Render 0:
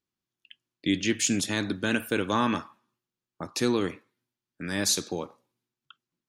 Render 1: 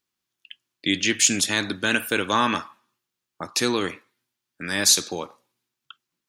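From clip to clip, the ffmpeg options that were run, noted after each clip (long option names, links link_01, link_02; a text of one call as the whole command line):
ffmpeg -i in.wav -af "tiltshelf=frequency=640:gain=-5,volume=3.5dB" out.wav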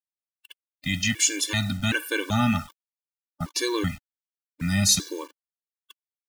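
ffmpeg -i in.wav -af "acrusher=bits=6:mix=0:aa=0.000001,asubboost=boost=11.5:cutoff=150,afftfilt=real='re*gt(sin(2*PI*1.3*pts/sr)*(1-2*mod(floor(b*sr/1024/300),2)),0)':imag='im*gt(sin(2*PI*1.3*pts/sr)*(1-2*mod(floor(b*sr/1024/300),2)),0)':win_size=1024:overlap=0.75" out.wav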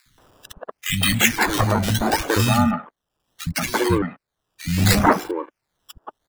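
ffmpeg -i in.wav -filter_complex "[0:a]asplit=2[link_01][link_02];[link_02]acompressor=mode=upward:threshold=-24dB:ratio=2.5,volume=1dB[link_03];[link_01][link_03]amix=inputs=2:normalize=0,acrusher=samples=14:mix=1:aa=0.000001:lfo=1:lforange=14:lforate=0.71,acrossover=split=200|1800[link_04][link_05][link_06];[link_04]adelay=60[link_07];[link_05]adelay=180[link_08];[link_07][link_08][link_06]amix=inputs=3:normalize=0,volume=1dB" out.wav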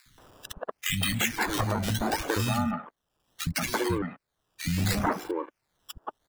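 ffmpeg -i in.wav -af "acompressor=threshold=-27dB:ratio=3" out.wav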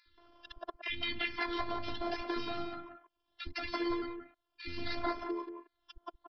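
ffmpeg -i in.wav -af "afftfilt=real='hypot(re,im)*cos(PI*b)':imag='0':win_size=512:overlap=0.75,aecho=1:1:178:0.376,aresample=11025,aresample=44100,volume=-4dB" out.wav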